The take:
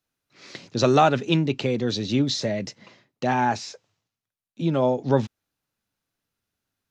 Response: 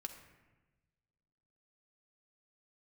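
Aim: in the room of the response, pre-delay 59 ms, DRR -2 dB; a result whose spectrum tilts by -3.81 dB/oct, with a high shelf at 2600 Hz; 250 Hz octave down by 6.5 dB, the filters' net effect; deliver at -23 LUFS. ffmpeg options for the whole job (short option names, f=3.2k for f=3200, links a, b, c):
-filter_complex "[0:a]equalizer=f=250:t=o:g=-9,highshelf=f=2.6k:g=7.5,asplit=2[a][b];[1:a]atrim=start_sample=2205,adelay=59[c];[b][c]afir=irnorm=-1:irlink=0,volume=5dB[d];[a][d]amix=inputs=2:normalize=0,volume=-2.5dB"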